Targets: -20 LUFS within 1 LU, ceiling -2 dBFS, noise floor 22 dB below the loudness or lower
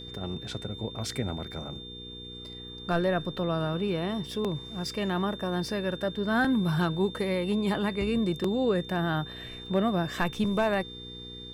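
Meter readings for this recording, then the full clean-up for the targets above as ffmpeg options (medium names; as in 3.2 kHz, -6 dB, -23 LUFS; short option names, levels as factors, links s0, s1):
hum 60 Hz; highest harmonic 480 Hz; hum level -42 dBFS; steady tone 3.6 kHz; tone level -42 dBFS; loudness -29.5 LUFS; peak level -15.5 dBFS; loudness target -20.0 LUFS
-> -af "bandreject=f=60:t=h:w=4,bandreject=f=120:t=h:w=4,bandreject=f=180:t=h:w=4,bandreject=f=240:t=h:w=4,bandreject=f=300:t=h:w=4,bandreject=f=360:t=h:w=4,bandreject=f=420:t=h:w=4,bandreject=f=480:t=h:w=4"
-af "bandreject=f=3600:w=30"
-af "volume=2.99"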